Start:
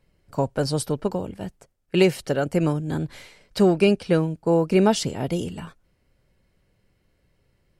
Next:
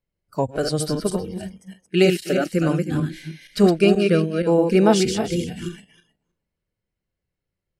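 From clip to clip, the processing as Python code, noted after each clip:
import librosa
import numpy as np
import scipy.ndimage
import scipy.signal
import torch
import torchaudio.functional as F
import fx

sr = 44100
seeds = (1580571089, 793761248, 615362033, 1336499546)

y = fx.reverse_delay_fb(x, sr, ms=158, feedback_pct=41, wet_db=-4)
y = fx.noise_reduce_blind(y, sr, reduce_db=20)
y = F.gain(torch.from_numpy(y), 1.5).numpy()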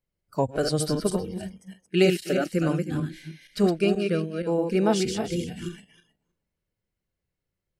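y = fx.rider(x, sr, range_db=5, speed_s=2.0)
y = F.gain(torch.from_numpy(y), -6.5).numpy()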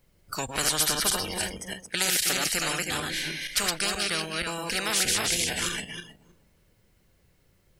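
y = fx.spectral_comp(x, sr, ratio=10.0)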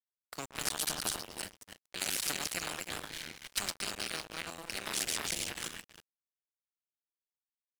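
y = fx.cycle_switch(x, sr, every=2, mode='muted')
y = np.sign(y) * np.maximum(np.abs(y) - 10.0 ** (-35.0 / 20.0), 0.0)
y = F.gain(torch.from_numpy(y), -4.5).numpy()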